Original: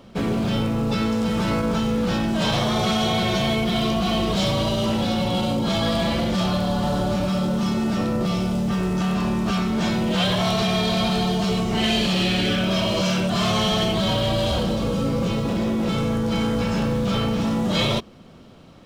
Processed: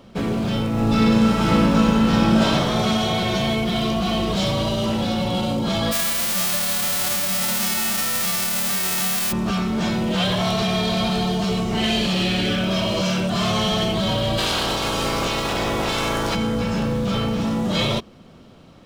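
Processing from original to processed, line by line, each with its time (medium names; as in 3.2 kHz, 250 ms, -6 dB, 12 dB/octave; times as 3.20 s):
0.69–2.43 s: reverb throw, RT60 2.5 s, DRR -4.5 dB
5.91–9.31 s: formants flattened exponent 0.1
14.37–16.34 s: spectral peaks clipped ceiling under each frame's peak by 22 dB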